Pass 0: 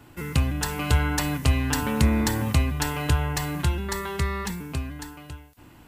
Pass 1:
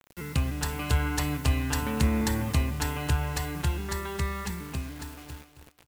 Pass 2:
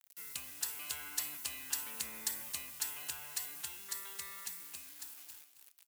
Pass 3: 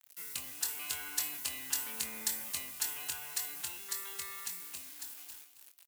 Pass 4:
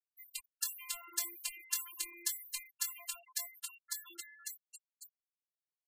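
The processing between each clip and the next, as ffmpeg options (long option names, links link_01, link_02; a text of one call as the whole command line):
ffmpeg -i in.wav -filter_complex "[0:a]acrusher=bits=6:mix=0:aa=0.000001,asplit=2[link_01][link_02];[link_02]aecho=0:1:268|536|804:0.282|0.0535|0.0102[link_03];[link_01][link_03]amix=inputs=2:normalize=0,volume=-4.5dB" out.wav
ffmpeg -i in.wav -af "aderivative,volume=-1.5dB" out.wav
ffmpeg -i in.wav -filter_complex "[0:a]asplit=2[link_01][link_02];[link_02]adelay=23,volume=-7.5dB[link_03];[link_01][link_03]amix=inputs=2:normalize=0,volume=2.5dB" out.wav
ffmpeg -i in.wav -af "afftfilt=real='hypot(re,im)*cos(PI*b)':imag='0':win_size=512:overlap=0.75,afftfilt=real='re*gte(hypot(re,im),0.0126)':imag='im*gte(hypot(re,im),0.0126)':win_size=1024:overlap=0.75,volume=2dB" out.wav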